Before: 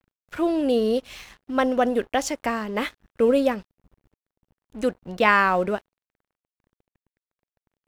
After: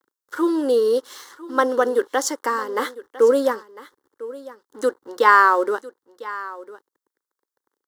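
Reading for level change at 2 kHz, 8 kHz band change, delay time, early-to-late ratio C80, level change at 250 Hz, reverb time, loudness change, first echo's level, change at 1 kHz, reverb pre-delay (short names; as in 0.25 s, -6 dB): +3.0 dB, +6.0 dB, 1.002 s, none, -1.5 dB, none, +3.0 dB, -17.5 dB, +5.5 dB, none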